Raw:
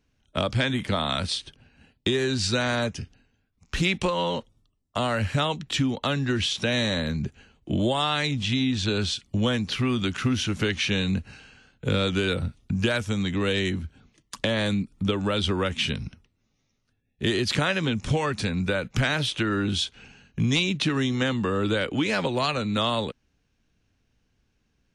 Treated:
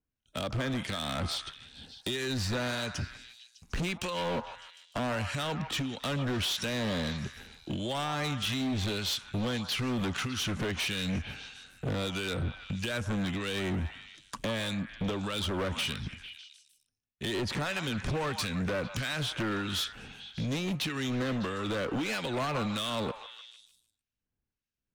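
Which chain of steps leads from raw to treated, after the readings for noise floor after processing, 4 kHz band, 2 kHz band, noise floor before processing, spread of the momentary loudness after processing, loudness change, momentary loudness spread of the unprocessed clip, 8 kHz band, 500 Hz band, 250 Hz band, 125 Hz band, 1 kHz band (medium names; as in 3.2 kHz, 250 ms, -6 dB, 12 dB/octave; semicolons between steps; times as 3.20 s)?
under -85 dBFS, -6.5 dB, -7.0 dB, -72 dBFS, 11 LU, -7.0 dB, 7 LU, -3.5 dB, -7.5 dB, -7.5 dB, -7.0 dB, -6.0 dB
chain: gate with hold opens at -54 dBFS; compression 6:1, threshold -26 dBFS, peak gain reduction 8 dB; harmonic tremolo 1.6 Hz, depth 70%, crossover 1.7 kHz; hard clipper -32.5 dBFS, distortion -8 dB; on a send: repeats whose band climbs or falls 151 ms, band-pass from 1 kHz, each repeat 0.7 oct, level -6 dB; on the sum: trim +4 dB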